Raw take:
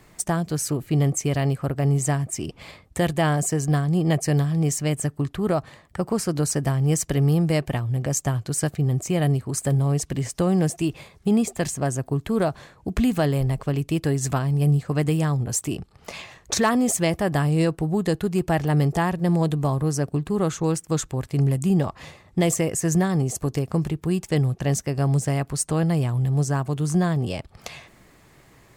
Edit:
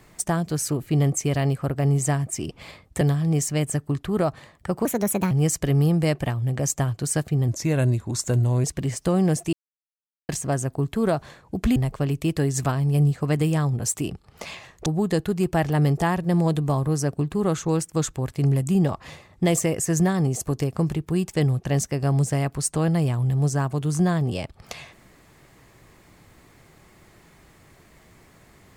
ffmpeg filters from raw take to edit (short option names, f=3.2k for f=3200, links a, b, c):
-filter_complex "[0:a]asplit=10[a][b][c][d][e][f][g][h][i][j];[a]atrim=end=3.012[k];[b]atrim=start=4.308:end=6.154[l];[c]atrim=start=6.15:end=6.78,asetpts=PTS-STARTPTS,asetrate=60417,aresample=44100[m];[d]atrim=start=6.776:end=8.954[n];[e]atrim=start=8.95:end=9.97,asetpts=PTS-STARTPTS,asetrate=38808,aresample=44100[o];[f]atrim=start=9.966:end=10.86,asetpts=PTS-STARTPTS,afade=t=out:st=0.89:d=0.004:c=hsin[p];[g]atrim=start=10.86:end=11.62,asetpts=PTS-STARTPTS,volume=0[q];[h]atrim=start=11.62:end=13.092,asetpts=PTS-STARTPTS,afade=t=in:d=0.004:c=hsin[r];[i]atrim=start=13.428:end=16.532[s];[j]atrim=start=17.808[t];[k][l]acrossfade=d=0.004:c1=hsin:c2=hsin[u];[u][m]acrossfade=d=0.004:c1=hsin:c2=hsin[v];[v][n]acrossfade=d=0.004:c1=hsin:c2=hsin[w];[w][o]acrossfade=d=0.004:c1=hsin:c2=hsin[x];[p][q][r]concat=n=3:v=0:a=1[y];[x][y]acrossfade=d=0.004:c1=hsin:c2=hsin[z];[z][s]acrossfade=d=0.004:c1=hsin:c2=hsin[aa];[aa][t]acrossfade=d=0.004:c1=hsin:c2=hsin"